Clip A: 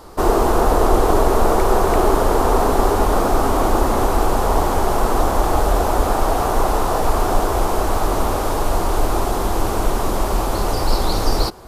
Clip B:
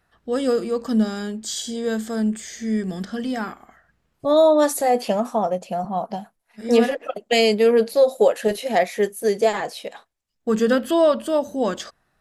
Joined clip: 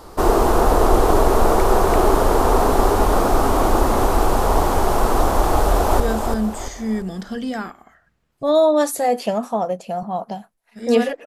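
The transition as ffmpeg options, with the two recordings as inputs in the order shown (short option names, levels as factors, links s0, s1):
-filter_complex "[0:a]apad=whole_dur=11.26,atrim=end=11.26,atrim=end=6.002[s0];[1:a]atrim=start=1.818:end=7.08[s1];[s0][s1]acrossfade=d=0.004:c1=hsin:c2=hsin,asplit=2[s2][s3];[s3]afade=t=in:st=5.56:d=0.01,afade=t=out:st=6:d=0.01,aecho=0:1:340|680|1020|1360|1700:0.530884|0.212354|0.0849415|0.0339766|0.0135906[s4];[s2][s4]amix=inputs=2:normalize=0"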